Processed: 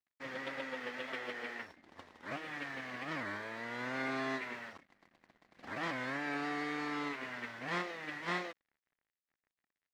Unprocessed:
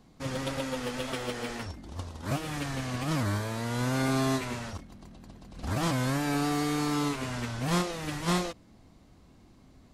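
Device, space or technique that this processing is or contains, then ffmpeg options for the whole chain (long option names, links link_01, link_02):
pocket radio on a weak battery: -af "highpass=290,lowpass=3700,aeval=exprs='sgn(val(0))*max(abs(val(0))-0.00158,0)':channel_layout=same,equalizer=frequency=1900:width_type=o:width=0.58:gain=11,volume=-8dB"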